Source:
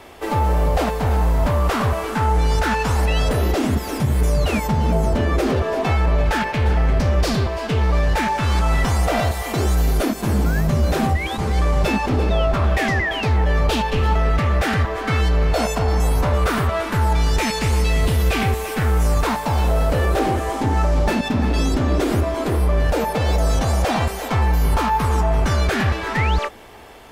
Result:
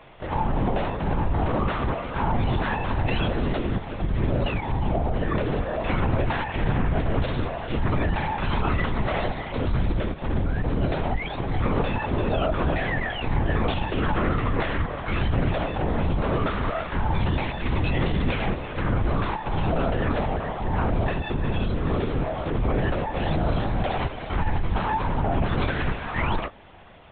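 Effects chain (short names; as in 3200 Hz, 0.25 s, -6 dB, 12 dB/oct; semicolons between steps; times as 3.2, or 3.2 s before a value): LPC vocoder at 8 kHz whisper; gain -6 dB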